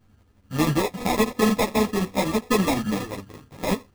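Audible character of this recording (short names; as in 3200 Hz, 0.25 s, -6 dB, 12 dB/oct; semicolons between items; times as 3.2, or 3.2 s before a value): a buzz of ramps at a fixed pitch in blocks of 16 samples; chopped level 12 Hz, depth 60%, duty 80%; aliases and images of a low sample rate 1500 Hz, jitter 0%; a shimmering, thickened sound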